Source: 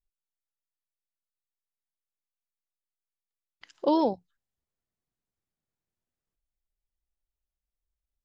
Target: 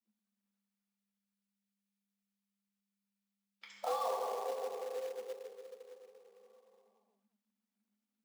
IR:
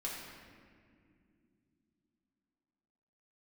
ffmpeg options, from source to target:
-filter_complex "[0:a]lowshelf=f=210:g=-9[a];[1:a]atrim=start_sample=2205[b];[a][b]afir=irnorm=-1:irlink=0,acrossover=split=1500[c][d];[c]acrusher=bits=3:mode=log:mix=0:aa=0.000001[e];[e][d]amix=inputs=2:normalize=0,acompressor=threshold=-36dB:ratio=3,afreqshift=200"

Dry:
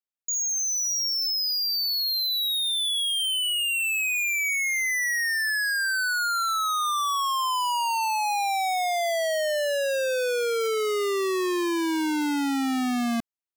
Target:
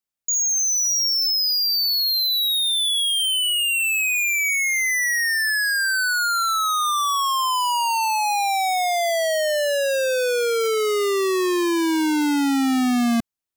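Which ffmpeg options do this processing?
-af "bass=f=250:g=5,treble=f=4k:g=2,volume=4dB"

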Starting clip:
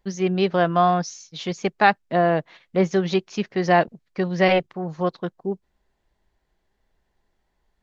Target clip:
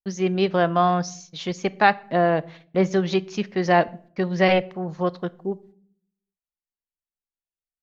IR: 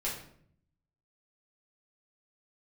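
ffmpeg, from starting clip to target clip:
-filter_complex "[0:a]agate=range=-35dB:threshold=-48dB:ratio=16:detection=peak,asplit=2[a][b];[1:a]atrim=start_sample=2205,asetrate=52920,aresample=44100[c];[b][c]afir=irnorm=-1:irlink=0,volume=-18.5dB[d];[a][d]amix=inputs=2:normalize=0,volume=-1dB"

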